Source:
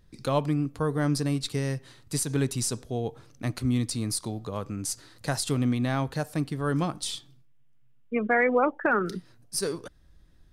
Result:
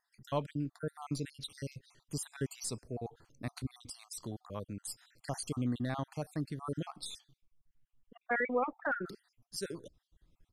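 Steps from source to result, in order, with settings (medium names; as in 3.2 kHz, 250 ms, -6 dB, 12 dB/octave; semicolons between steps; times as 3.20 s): random holes in the spectrogram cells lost 53%; resampled via 32 kHz; trim -8 dB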